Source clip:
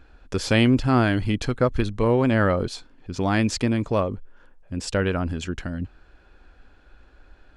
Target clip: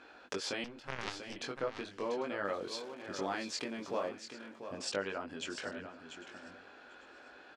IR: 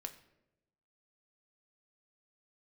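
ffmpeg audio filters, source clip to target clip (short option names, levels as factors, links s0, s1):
-filter_complex "[0:a]alimiter=limit=0.251:level=0:latency=1:release=368,acompressor=threshold=0.0126:ratio=4,flanger=delay=20:depth=2.5:speed=0.38,asettb=1/sr,asplit=3[s0][s1][s2];[s0]atrim=end=2.454[s3];[s1]atrim=start=2.45:end=4.09,asetpts=PTS-STARTPTS,afade=t=in:d=0.004:c=qsin,afade=t=out:st=1.636:d=0.004:c=qsin,aeval=exprs='val(0)*gte(abs(val(0)),0.00133)':c=same[s4];[s2]atrim=start=4.086[s5];[s3][s4]acrossfade=d=0.004:c1=hsin:c2=qsin[s6];[s6][s5]acrossfade=d=0.004:c1=qsin:c2=hsin,highpass=390,lowpass=7200,aecho=1:1:796|1592|2388:0.112|0.0415|0.0154,asettb=1/sr,asplit=3[s7][s8][s9];[s7]atrim=end=0.644[s10];[s8]atrim=start=0.64:end=1.36,asetpts=PTS-STARTPTS,afade=t=in:d=0.004:c=qsin,afade=t=out:st=0.716:d=0.004:c=qsin,aeval=exprs='0.0251*(cos(1*acos(clip(val(0)/0.0251,-1,1)))-cos(1*PI/2))+0.01*(cos(2*acos(clip(val(0)/0.0251,-1,1)))-cos(2*PI/2))+0.0126*(cos(3*acos(clip(val(0)/0.0251,-1,1)))-cos(3*PI/2))':c=same[s11];[s9]atrim=start=1.356[s12];[s10][s11]acrossfade=d=0.004:c1=hsin:c2=qsin[s13];[s13][s12]acrossfade=d=0.004:c1=qsin:c2=hsin,asplit=2[s14][s15];[s15]aecho=0:1:690:0.335[s16];[s14][s16]amix=inputs=2:normalize=0,volume=2.37"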